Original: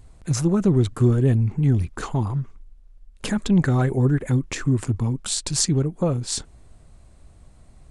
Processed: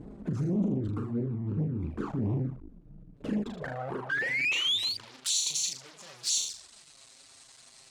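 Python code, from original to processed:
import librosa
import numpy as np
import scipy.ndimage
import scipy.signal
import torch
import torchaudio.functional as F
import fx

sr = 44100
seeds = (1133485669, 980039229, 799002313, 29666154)

p1 = fx.hum_notches(x, sr, base_hz=50, count=4, at=(0.7, 1.61), fade=0.02)
p2 = fx.over_compress(p1, sr, threshold_db=-25.0, ratio=-0.5)
p3 = p2 + fx.room_flutter(p2, sr, wall_m=6.6, rt60_s=0.35, dry=0)
p4 = fx.spec_paint(p3, sr, seeds[0], shape='rise', start_s=4.09, length_s=0.88, low_hz=1500.0, high_hz=4700.0, level_db=-28.0)
p5 = fx.fuzz(p4, sr, gain_db=39.0, gate_db=-48.0)
p6 = p4 + (p5 * 10.0 ** (-4.5 / 20.0))
p7 = fx.filter_sweep_bandpass(p6, sr, from_hz=270.0, to_hz=5000.0, start_s=3.22, end_s=5.19, q=1.4)
p8 = fx.env_flanger(p7, sr, rest_ms=9.4, full_db=-17.5)
y = p8 * 10.0 ** (-6.5 / 20.0)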